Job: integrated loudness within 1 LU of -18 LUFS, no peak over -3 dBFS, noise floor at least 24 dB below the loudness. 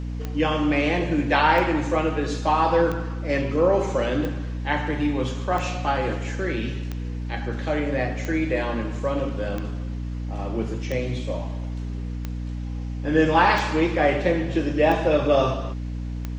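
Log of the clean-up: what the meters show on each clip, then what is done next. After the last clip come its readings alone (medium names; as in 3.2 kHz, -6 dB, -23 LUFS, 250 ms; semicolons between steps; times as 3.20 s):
clicks found 13; hum 60 Hz; highest harmonic 300 Hz; hum level -27 dBFS; loudness -24.0 LUFS; peak level -5.5 dBFS; loudness target -18.0 LUFS
-> de-click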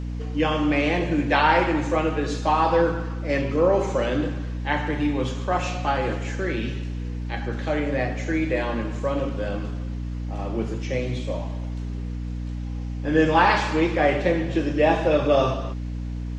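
clicks found 0; hum 60 Hz; highest harmonic 300 Hz; hum level -27 dBFS
-> de-hum 60 Hz, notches 5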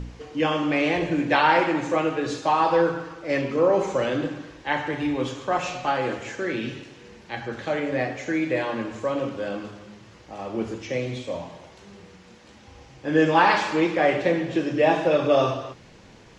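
hum not found; loudness -24.0 LUFS; peak level -6.0 dBFS; loudness target -18.0 LUFS
-> trim +6 dB; peak limiter -3 dBFS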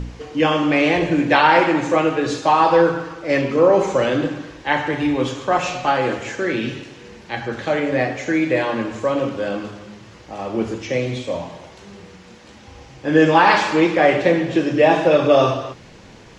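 loudness -18.0 LUFS; peak level -3.0 dBFS; noise floor -43 dBFS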